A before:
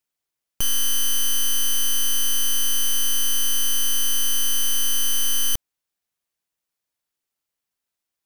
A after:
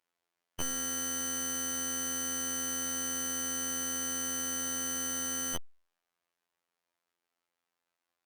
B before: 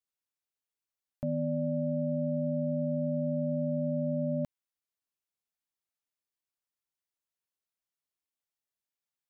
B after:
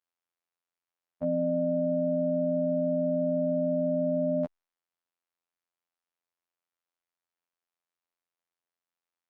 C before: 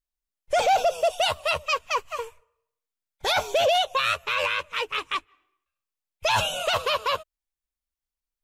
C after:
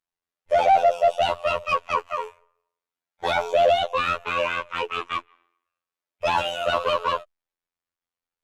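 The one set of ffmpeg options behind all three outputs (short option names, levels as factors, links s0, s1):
-filter_complex "[0:a]afftfilt=real='hypot(re,im)*cos(PI*b)':imag='0':win_size=2048:overlap=0.75,asplit=2[s0][s1];[s1]highpass=f=720:p=1,volume=8.91,asoftclip=type=tanh:threshold=0.562[s2];[s0][s2]amix=inputs=2:normalize=0,lowpass=f=1000:p=1,volume=0.501" -ar 48000 -c:a libopus -b:a 256k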